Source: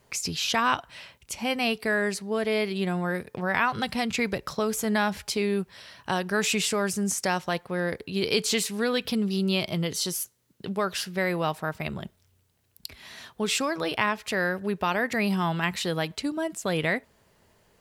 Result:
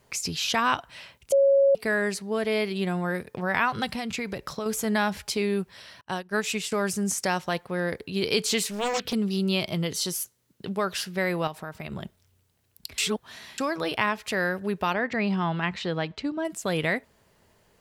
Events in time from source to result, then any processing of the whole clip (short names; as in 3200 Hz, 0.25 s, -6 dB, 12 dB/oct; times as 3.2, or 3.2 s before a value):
1.32–1.75 bleep 552 Hz -15.5 dBFS
3.9–4.66 compressor 3:1, threshold -28 dBFS
6.01–6.72 upward expander 2.5:1, over -43 dBFS
8.7–9.13 Doppler distortion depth 0.91 ms
11.47–11.92 compressor 3:1, threshold -33 dBFS
12.98–13.58 reverse
14.93–16.45 air absorption 150 m